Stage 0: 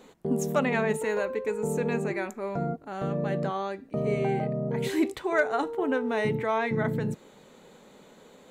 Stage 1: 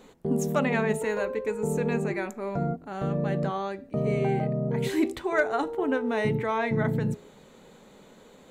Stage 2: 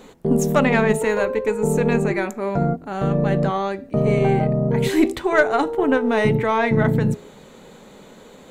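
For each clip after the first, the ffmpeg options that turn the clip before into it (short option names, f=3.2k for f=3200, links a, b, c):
-af "lowshelf=f=120:g=8,bandreject=f=82.92:t=h:w=4,bandreject=f=165.84:t=h:w=4,bandreject=f=248.76:t=h:w=4,bandreject=f=331.68:t=h:w=4,bandreject=f=414.6:t=h:w=4,bandreject=f=497.52:t=h:w=4,bandreject=f=580.44:t=h:w=4,bandreject=f=663.36:t=h:w=4,bandreject=f=746.28:t=h:w=4,bandreject=f=829.2:t=h:w=4,bandreject=f=912.12:t=h:w=4"
-af "aeval=exprs='0.266*(cos(1*acos(clip(val(0)/0.266,-1,1)))-cos(1*PI/2))+0.0133*(cos(4*acos(clip(val(0)/0.266,-1,1)))-cos(4*PI/2))':c=same,volume=8dB"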